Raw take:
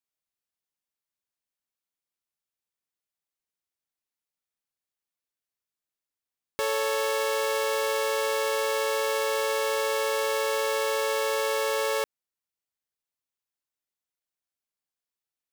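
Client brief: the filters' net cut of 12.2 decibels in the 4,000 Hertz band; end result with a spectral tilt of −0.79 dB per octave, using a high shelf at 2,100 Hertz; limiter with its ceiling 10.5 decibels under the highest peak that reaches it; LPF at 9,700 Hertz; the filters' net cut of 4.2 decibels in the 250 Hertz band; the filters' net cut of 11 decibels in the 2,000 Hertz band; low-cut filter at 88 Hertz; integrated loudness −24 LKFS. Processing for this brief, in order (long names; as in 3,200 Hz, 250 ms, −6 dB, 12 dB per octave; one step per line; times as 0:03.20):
high-pass filter 88 Hz
low-pass filter 9,700 Hz
parametric band 250 Hz −7 dB
parametric band 2,000 Hz −8.5 dB
high-shelf EQ 2,100 Hz −6 dB
parametric band 4,000 Hz −7 dB
level +16 dB
brickwall limiter −16 dBFS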